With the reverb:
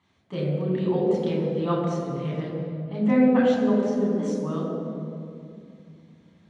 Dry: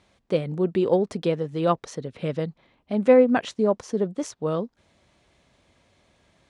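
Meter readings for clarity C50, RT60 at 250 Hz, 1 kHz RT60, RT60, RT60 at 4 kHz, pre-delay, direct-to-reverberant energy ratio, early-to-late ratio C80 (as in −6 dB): 0.5 dB, 3.7 s, 2.3 s, 2.5 s, 1.6 s, 3 ms, −4.5 dB, 2.0 dB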